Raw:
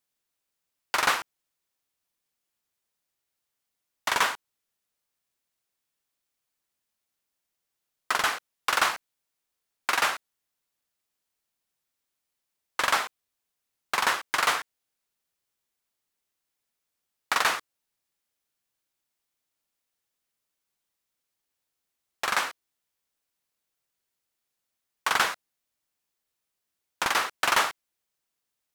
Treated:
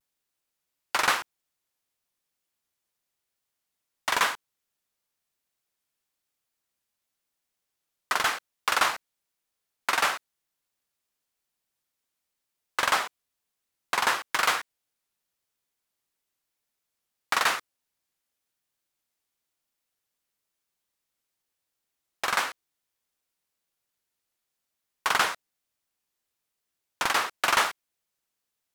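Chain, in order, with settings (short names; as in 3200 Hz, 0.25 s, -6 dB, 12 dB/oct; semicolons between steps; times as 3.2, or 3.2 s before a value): vibrato 0.98 Hz 65 cents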